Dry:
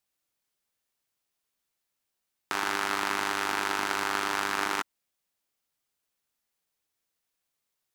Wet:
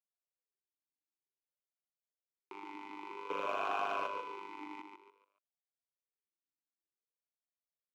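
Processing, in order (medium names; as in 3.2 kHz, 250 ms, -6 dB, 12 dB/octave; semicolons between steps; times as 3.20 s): local Wiener filter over 41 samples; 3.30–4.07 s: waveshaping leveller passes 5; feedback delay 142 ms, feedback 34%, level -6 dB; talking filter a-u 0.53 Hz; trim -4.5 dB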